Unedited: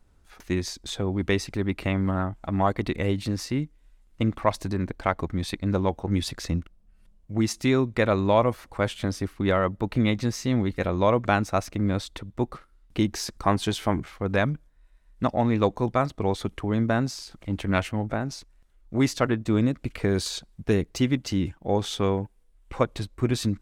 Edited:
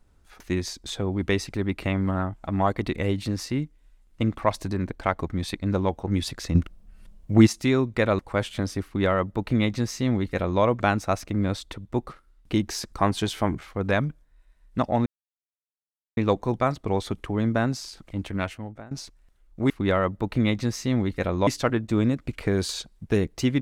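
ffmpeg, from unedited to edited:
-filter_complex "[0:a]asplit=8[s0][s1][s2][s3][s4][s5][s6][s7];[s0]atrim=end=6.552[s8];[s1]atrim=start=6.548:end=7.472,asetpts=PTS-STARTPTS,volume=2.82[s9];[s2]atrim=start=7.468:end=8.192[s10];[s3]atrim=start=8.638:end=15.51,asetpts=PTS-STARTPTS,afade=t=out:st=6.868:d=0.004:c=hsin,apad=pad_dur=1.11[s11];[s4]atrim=start=15.51:end=18.25,asetpts=PTS-STARTPTS,afade=t=in:d=0.004:c=hsin,afade=t=out:st=1.84:d=0.9:silence=0.112202[s12];[s5]atrim=start=18.25:end=19.042,asetpts=PTS-STARTPTS,afade=t=in:d=0.004:c=hsin:silence=0.112202[s13];[s6]atrim=start=9.298:end=11.072[s14];[s7]atrim=start=19.038[s15];[s8][s9]acrossfade=d=0.004:c1=hsin:c2=hsin[s16];[s16][s10]acrossfade=d=0.004:c1=hsin:c2=hsin[s17];[s11][s12][s13]concat=n=3:v=0:a=1[s18];[s17][s18]acrossfade=d=0.004:c1=hsin:c2=hsin[s19];[s19][s14]acrossfade=d=0.004:c1=hsin:c2=hsin[s20];[s20][s15]acrossfade=d=0.004:c1=hsin:c2=hsin"

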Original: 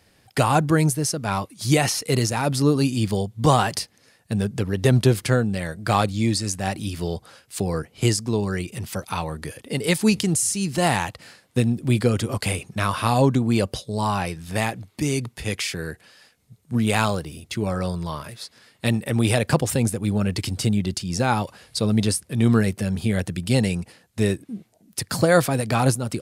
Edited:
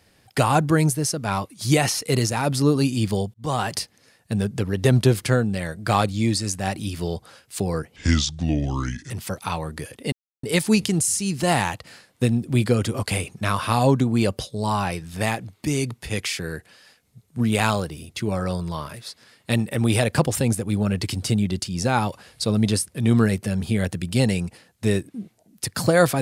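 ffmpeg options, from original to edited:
-filter_complex "[0:a]asplit=5[s0][s1][s2][s3][s4];[s0]atrim=end=3.34,asetpts=PTS-STARTPTS,afade=t=out:st=3.336:d=0.004:c=hsin[s5];[s1]atrim=start=3.34:end=7.964,asetpts=PTS-STARTPTS,afade=t=in:d=0.44[s6];[s2]atrim=start=7.96:end=8.76,asetpts=PTS-STARTPTS,asetrate=30870,aresample=44100[s7];[s3]atrim=start=8.756:end=9.78,asetpts=PTS-STARTPTS,afade=t=out:st=1.02:d=0.004:c=hsin,apad=pad_dur=0.31[s8];[s4]atrim=start=9.78,asetpts=PTS-STARTPTS,afade=t=in:d=0.004:c=hsin[s9];[s5][s6]concat=n=2:v=0:a=1[s10];[s10][s7]acrossfade=d=0.004:c1=hsin:c2=hsin[s11];[s8][s9]concat=n=2:v=0:a=1[s12];[s11][s12]acrossfade=d=0.004:c1=hsin:c2=hsin"

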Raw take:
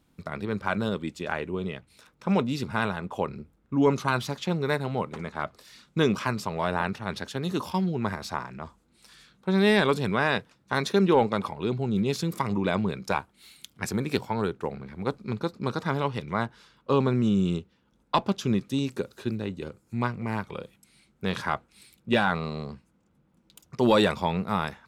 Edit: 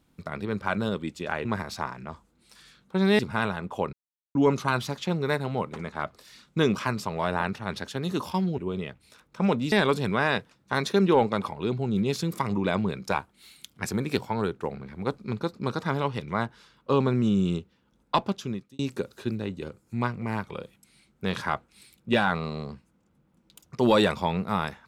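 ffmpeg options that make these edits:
-filter_complex "[0:a]asplit=8[s0][s1][s2][s3][s4][s5][s6][s7];[s0]atrim=end=1.452[s8];[s1]atrim=start=7.978:end=9.722[s9];[s2]atrim=start=2.588:end=3.33,asetpts=PTS-STARTPTS,afade=t=out:st=0.738:d=0.004:c=hsin[s10];[s3]atrim=start=3.33:end=3.75,asetpts=PTS-STARTPTS,volume=0[s11];[s4]atrim=start=3.75:end=7.982,asetpts=PTS-STARTPTS,afade=t=in:d=0.004:c=hsin[s12];[s5]atrim=start=1.448:end=2.592[s13];[s6]atrim=start=9.718:end=18.79,asetpts=PTS-STARTPTS,afade=t=out:st=8.442:d=0.63[s14];[s7]atrim=start=18.79,asetpts=PTS-STARTPTS,afade=t=in:d=0.004:c=hsin[s15];[s8][s9]acrossfade=d=0.004:c1=hsin:c2=hsin[s16];[s10][s11][s12]concat=n=3:v=0:a=1[s17];[s16][s17]acrossfade=d=0.004:c1=hsin:c2=hsin[s18];[s18][s13]acrossfade=d=0.004:c1=hsin:c2=hsin[s19];[s14][s15]concat=n=2:v=0:a=1[s20];[s19][s20]acrossfade=d=0.004:c1=hsin:c2=hsin"

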